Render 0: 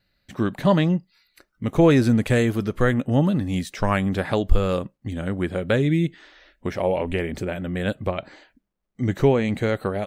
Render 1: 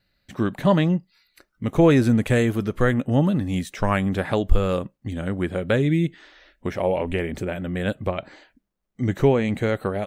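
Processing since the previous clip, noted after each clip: dynamic EQ 4700 Hz, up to -5 dB, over -53 dBFS, Q 2.9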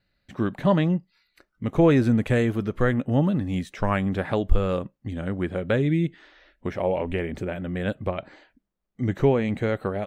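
high shelf 5700 Hz -10.5 dB; gain -2 dB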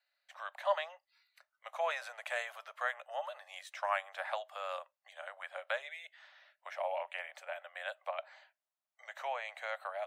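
steep high-pass 600 Hz 72 dB/oct; gain -6 dB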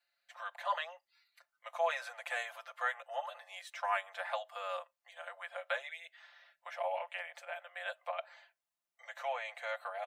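comb 5.8 ms, depth 97%; gain -2.5 dB

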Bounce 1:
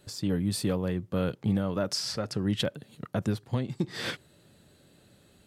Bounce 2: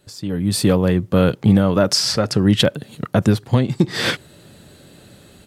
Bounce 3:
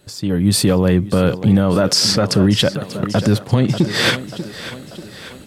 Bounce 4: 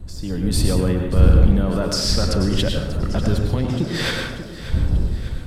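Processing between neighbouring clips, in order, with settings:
AGC gain up to 12.5 dB; gain +1.5 dB
thinning echo 0.589 s, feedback 55%, high-pass 150 Hz, level -15 dB; maximiser +8.5 dB; gain -3.5 dB
wind noise 80 Hz -13 dBFS; plate-style reverb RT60 0.82 s, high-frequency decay 0.65×, pre-delay 85 ms, DRR 2.5 dB; gain -8.5 dB

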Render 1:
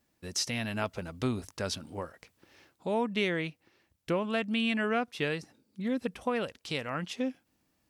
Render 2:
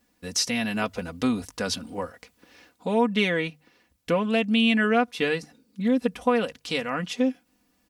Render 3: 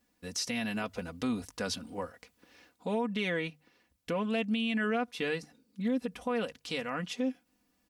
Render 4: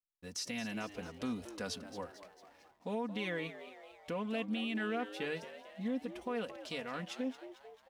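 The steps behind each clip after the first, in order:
notches 50/100/150 Hz; comb 4.1 ms, depth 63%; gain +5 dB
limiter -17 dBFS, peak gain reduction 7 dB; gain -6 dB
frequency-shifting echo 0.223 s, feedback 59%, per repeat +94 Hz, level -13 dB; backlash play -55.5 dBFS; gain -6 dB

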